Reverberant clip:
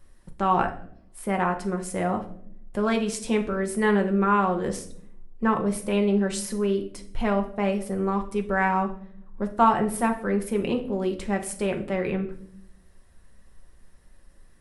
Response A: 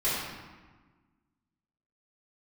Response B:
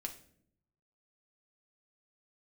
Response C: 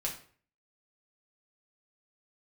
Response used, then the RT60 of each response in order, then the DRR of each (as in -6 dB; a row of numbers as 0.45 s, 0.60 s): B; 1.3 s, no single decay rate, 0.50 s; -11.5 dB, 2.5 dB, -2.0 dB